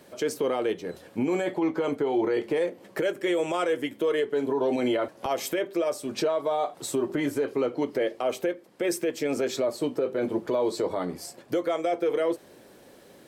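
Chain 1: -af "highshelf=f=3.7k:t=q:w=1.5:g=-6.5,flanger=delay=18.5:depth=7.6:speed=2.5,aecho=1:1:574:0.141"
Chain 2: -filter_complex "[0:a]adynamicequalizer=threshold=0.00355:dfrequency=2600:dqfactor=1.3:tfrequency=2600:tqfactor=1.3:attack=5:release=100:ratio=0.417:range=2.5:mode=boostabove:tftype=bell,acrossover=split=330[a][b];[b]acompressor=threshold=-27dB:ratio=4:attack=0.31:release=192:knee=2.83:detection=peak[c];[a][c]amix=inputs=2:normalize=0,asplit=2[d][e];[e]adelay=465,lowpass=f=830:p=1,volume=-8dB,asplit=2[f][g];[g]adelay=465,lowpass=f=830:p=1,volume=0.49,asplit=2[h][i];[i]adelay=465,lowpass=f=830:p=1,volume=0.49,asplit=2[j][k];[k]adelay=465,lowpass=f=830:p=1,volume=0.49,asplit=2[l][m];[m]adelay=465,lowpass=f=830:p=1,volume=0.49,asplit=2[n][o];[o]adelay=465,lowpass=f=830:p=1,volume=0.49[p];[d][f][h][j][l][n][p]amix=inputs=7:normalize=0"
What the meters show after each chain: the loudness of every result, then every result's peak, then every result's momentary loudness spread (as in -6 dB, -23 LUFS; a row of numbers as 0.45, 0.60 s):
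-30.5, -30.0 LUFS; -17.0, -16.5 dBFS; 6, 5 LU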